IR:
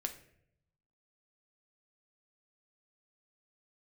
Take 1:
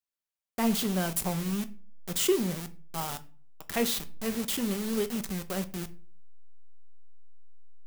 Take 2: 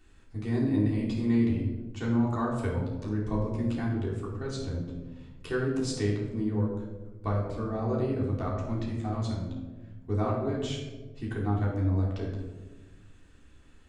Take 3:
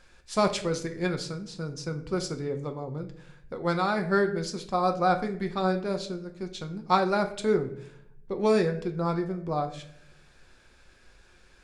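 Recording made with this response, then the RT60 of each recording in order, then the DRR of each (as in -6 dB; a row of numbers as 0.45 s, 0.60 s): 3; 0.40 s, 1.3 s, 0.70 s; 8.5 dB, -6.0 dB, 5.0 dB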